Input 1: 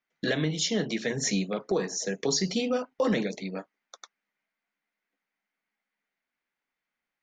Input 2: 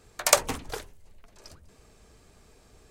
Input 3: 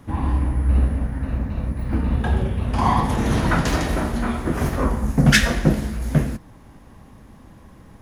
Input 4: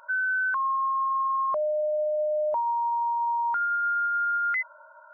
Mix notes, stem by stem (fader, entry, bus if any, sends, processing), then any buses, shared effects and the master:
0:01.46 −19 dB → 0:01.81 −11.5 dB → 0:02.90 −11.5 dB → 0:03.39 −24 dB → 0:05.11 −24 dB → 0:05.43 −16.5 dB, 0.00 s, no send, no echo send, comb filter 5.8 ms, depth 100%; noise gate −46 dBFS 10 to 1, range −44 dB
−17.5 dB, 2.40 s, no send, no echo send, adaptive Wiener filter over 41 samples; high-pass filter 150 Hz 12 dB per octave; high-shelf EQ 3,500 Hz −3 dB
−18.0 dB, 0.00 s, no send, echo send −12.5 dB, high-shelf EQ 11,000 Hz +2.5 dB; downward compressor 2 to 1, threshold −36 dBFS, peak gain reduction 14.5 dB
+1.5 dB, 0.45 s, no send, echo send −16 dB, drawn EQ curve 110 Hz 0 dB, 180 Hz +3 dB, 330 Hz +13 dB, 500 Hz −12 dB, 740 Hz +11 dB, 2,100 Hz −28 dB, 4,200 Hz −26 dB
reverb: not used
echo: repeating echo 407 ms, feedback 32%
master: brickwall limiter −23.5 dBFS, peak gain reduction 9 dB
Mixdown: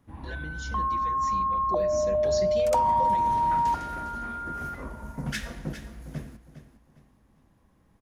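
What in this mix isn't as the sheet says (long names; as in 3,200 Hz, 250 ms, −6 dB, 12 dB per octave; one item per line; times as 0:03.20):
stem 3: missing downward compressor 2 to 1, threshold −36 dBFS, peak gain reduction 14.5 dB
stem 4: entry 0.45 s → 0.20 s
master: missing brickwall limiter −23.5 dBFS, peak gain reduction 9 dB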